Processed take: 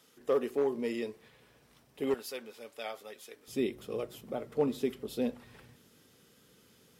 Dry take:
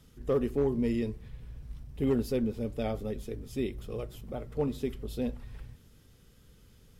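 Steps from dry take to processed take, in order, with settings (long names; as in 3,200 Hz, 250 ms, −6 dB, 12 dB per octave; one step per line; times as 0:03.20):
high-pass filter 430 Hz 12 dB per octave, from 0:02.14 980 Hz, from 0:03.48 230 Hz
level +2.5 dB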